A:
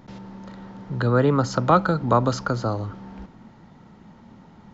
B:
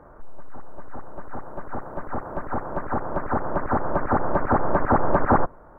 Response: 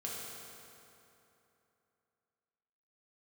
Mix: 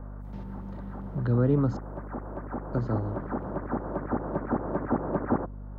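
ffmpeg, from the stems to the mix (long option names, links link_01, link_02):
-filter_complex "[0:a]lowpass=frequency=1700:poles=1,adelay=250,volume=-2dB,asplit=3[link_01][link_02][link_03];[link_01]atrim=end=1.77,asetpts=PTS-STARTPTS,afade=type=out:start_time=1.766:duration=0.004:curve=hsin[link_04];[link_02]atrim=start=1.77:end=2.73,asetpts=PTS-STARTPTS,volume=0[link_05];[link_03]atrim=start=2.73,asetpts=PTS-STARTPTS,afade=type=in:duration=0.004:curve=hsin[link_06];[link_04][link_05][link_06]concat=n=3:v=0:a=1[link_07];[1:a]highpass=170,aeval=exprs='val(0)+0.0141*(sin(2*PI*50*n/s)+sin(2*PI*2*50*n/s)/2+sin(2*PI*3*50*n/s)/3+sin(2*PI*4*50*n/s)/4+sin(2*PI*5*50*n/s)/5)':channel_layout=same,volume=-1.5dB[link_08];[link_07][link_08]amix=inputs=2:normalize=0,acrossover=split=420[link_09][link_10];[link_10]acompressor=threshold=-56dB:ratio=1.5[link_11];[link_09][link_11]amix=inputs=2:normalize=0"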